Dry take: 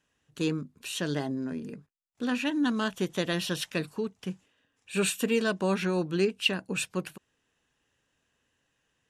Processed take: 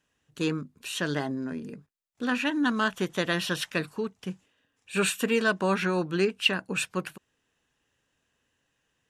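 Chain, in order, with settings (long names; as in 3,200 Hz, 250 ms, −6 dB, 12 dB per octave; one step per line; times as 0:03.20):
dynamic equaliser 1,400 Hz, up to +7 dB, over −46 dBFS, Q 0.89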